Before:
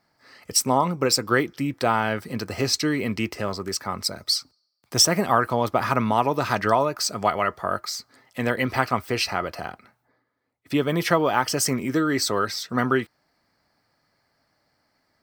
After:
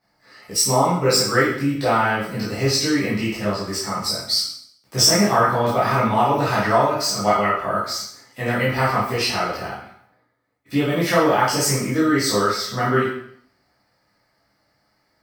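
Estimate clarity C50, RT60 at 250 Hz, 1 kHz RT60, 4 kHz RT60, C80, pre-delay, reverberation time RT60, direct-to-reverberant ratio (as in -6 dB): 2.5 dB, 0.65 s, 0.65 s, 0.60 s, 6.5 dB, 6 ms, 0.65 s, -9.5 dB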